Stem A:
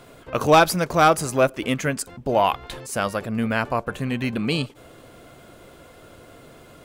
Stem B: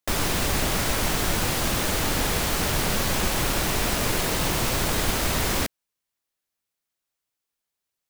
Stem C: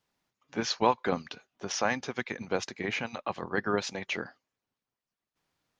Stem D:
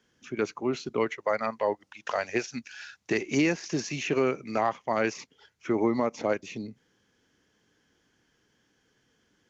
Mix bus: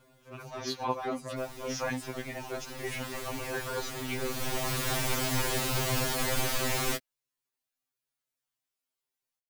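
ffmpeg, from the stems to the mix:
ffmpeg -i stem1.wav -i stem2.wav -i stem3.wav -i stem4.wav -filter_complex "[0:a]acompressor=threshold=-24dB:ratio=6,acrusher=bits=8:mix=0:aa=0.000001,volume=-14dB[link_01];[1:a]adelay=1300,volume=-3dB,afade=type=in:start_time=2.57:duration=0.68:silence=0.375837,afade=type=in:start_time=4.16:duration=0.72:silence=0.316228[link_02];[2:a]volume=-3.5dB[link_03];[3:a]acrusher=bits=6:mix=0:aa=0.5,volume=-14dB[link_04];[link_01][link_02][link_03][link_04]amix=inputs=4:normalize=0,afftfilt=real='re*2.45*eq(mod(b,6),0)':imag='im*2.45*eq(mod(b,6),0)':win_size=2048:overlap=0.75" out.wav

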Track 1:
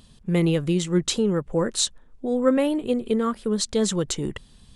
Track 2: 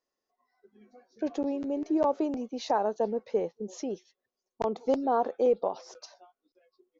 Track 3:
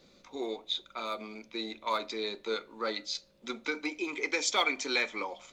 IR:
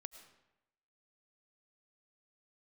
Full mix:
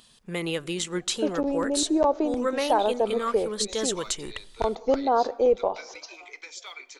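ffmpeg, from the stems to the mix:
-filter_complex "[0:a]volume=2dB,asplit=2[link_01][link_02];[link_02]volume=-17.5dB[link_03];[1:a]volume=2.5dB,asplit=2[link_04][link_05];[link_05]volume=-5dB[link_06];[2:a]highpass=frequency=310:width=0.5412,highpass=frequency=310:width=1.3066,alimiter=limit=-21.5dB:level=0:latency=1:release=318,adelay=2100,volume=-7.5dB,asplit=2[link_07][link_08];[link_08]volume=-14dB[link_09];[link_01][link_07]amix=inputs=2:normalize=0,highpass=frequency=1000:poles=1,alimiter=limit=-16.5dB:level=0:latency=1:release=131,volume=0dB[link_10];[3:a]atrim=start_sample=2205[link_11];[link_03][link_06][link_09]amix=inputs=3:normalize=0[link_12];[link_12][link_11]afir=irnorm=-1:irlink=0[link_13];[link_04][link_10][link_13]amix=inputs=3:normalize=0,asubboost=boost=8:cutoff=65"

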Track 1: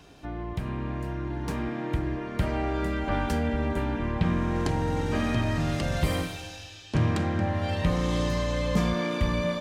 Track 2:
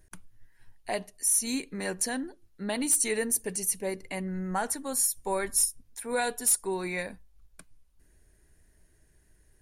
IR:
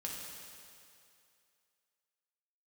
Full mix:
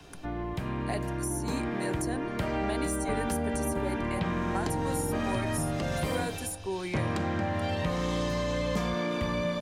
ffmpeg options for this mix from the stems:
-filter_complex "[0:a]volume=1.5dB[link_01];[1:a]volume=-1.5dB[link_02];[link_01][link_02]amix=inputs=2:normalize=0,acrossover=split=120|430|1200[link_03][link_04][link_05][link_06];[link_03]acompressor=threshold=-39dB:ratio=4[link_07];[link_04]acompressor=threshold=-32dB:ratio=4[link_08];[link_05]acompressor=threshold=-33dB:ratio=4[link_09];[link_06]acompressor=threshold=-38dB:ratio=4[link_10];[link_07][link_08][link_09][link_10]amix=inputs=4:normalize=0"

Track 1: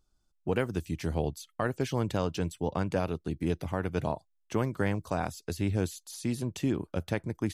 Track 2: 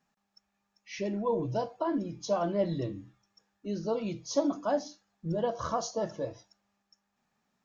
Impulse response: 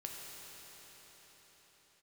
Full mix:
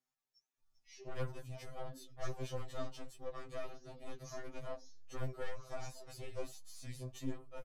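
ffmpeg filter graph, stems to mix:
-filter_complex "[0:a]aecho=1:1:6.1:0.85,asubboost=boost=7:cutoff=50,flanger=delay=3.3:depth=5.9:regen=56:speed=0.46:shape=sinusoidal,adelay=600,volume=0.5dB[link_01];[1:a]highshelf=frequency=5200:gain=12,acompressor=threshold=-41dB:ratio=2,volume=-7dB[link_02];[link_01][link_02]amix=inputs=2:normalize=0,aeval=exprs='(tanh(31.6*val(0)+0.6)-tanh(0.6))/31.6':channel_layout=same,flanger=delay=5.3:depth=4.9:regen=85:speed=1.5:shape=sinusoidal,afftfilt=real='re*2.45*eq(mod(b,6),0)':imag='im*2.45*eq(mod(b,6),0)':win_size=2048:overlap=0.75"

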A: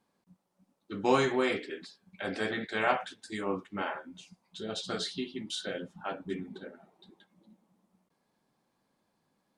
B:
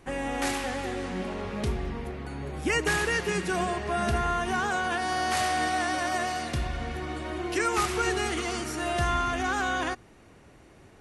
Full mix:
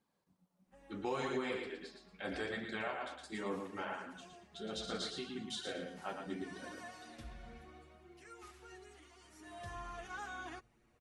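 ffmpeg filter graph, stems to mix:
ffmpeg -i stem1.wav -i stem2.wav -filter_complex "[0:a]volume=-2.5dB,asplit=2[link_01][link_02];[link_02]volume=-6dB[link_03];[1:a]asplit=2[link_04][link_05];[link_05]adelay=7,afreqshift=0.33[link_06];[link_04][link_06]amix=inputs=2:normalize=1,adelay=650,volume=-2.5dB,afade=type=in:start_time=6.36:duration=0.27:silence=0.316228,afade=type=out:start_time=7.55:duration=0.46:silence=0.375837,afade=type=in:start_time=9.17:duration=0.74:silence=0.281838[link_07];[link_03]aecho=0:1:114|228|342|456:1|0.26|0.0676|0.0176[link_08];[link_01][link_07][link_08]amix=inputs=3:normalize=0,flanger=delay=0.4:depth=5.1:regen=-46:speed=0.74:shape=triangular,alimiter=level_in=3.5dB:limit=-24dB:level=0:latency=1:release=304,volume=-3.5dB" out.wav

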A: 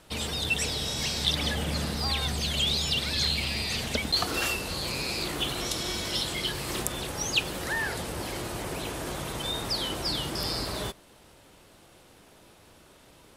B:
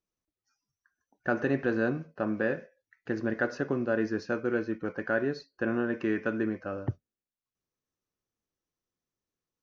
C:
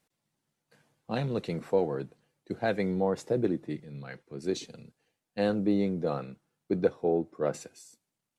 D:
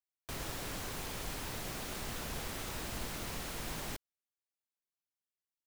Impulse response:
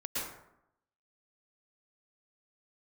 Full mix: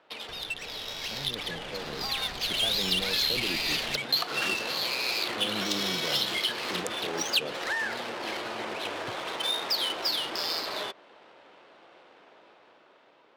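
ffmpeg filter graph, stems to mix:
-filter_complex "[0:a]lowpass=frequency=2800:poles=1,acompressor=threshold=-34dB:ratio=12,highpass=460,volume=-1.5dB[link_01];[1:a]adelay=2200,volume=-18.5dB[link_02];[2:a]alimiter=limit=-22dB:level=0:latency=1,volume=-13.5dB[link_03];[3:a]volume=1dB[link_04];[link_02][link_04]amix=inputs=2:normalize=0,acompressor=threshold=-48dB:ratio=6,volume=0dB[link_05];[link_01][link_03][link_05]amix=inputs=3:normalize=0,dynaudnorm=framelen=460:gausssize=7:maxgain=7dB,equalizer=frequency=4500:width_type=o:width=2.3:gain=8,adynamicsmooth=sensitivity=6.5:basefreq=2000"

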